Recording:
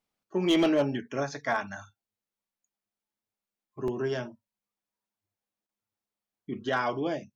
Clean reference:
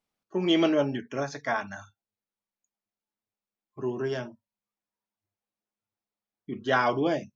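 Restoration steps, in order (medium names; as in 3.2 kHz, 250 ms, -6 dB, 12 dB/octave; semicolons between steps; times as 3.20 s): clip repair -17.5 dBFS; interpolate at 3.88 s, 1.9 ms; interpolate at 5.67 s, 17 ms; gain correction +4.5 dB, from 6.69 s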